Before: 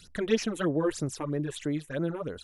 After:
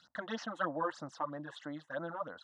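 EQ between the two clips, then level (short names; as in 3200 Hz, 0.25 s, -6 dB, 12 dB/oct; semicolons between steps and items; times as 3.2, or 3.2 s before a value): BPF 460–3200 Hz; air absorption 81 m; fixed phaser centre 990 Hz, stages 4; +4.0 dB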